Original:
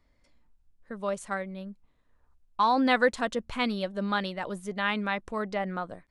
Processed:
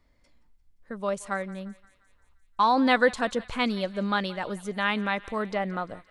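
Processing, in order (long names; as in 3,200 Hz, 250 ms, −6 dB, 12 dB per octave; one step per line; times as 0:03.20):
feedback echo with a high-pass in the loop 174 ms, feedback 66%, high-pass 1,000 Hz, level −18 dB
level +2 dB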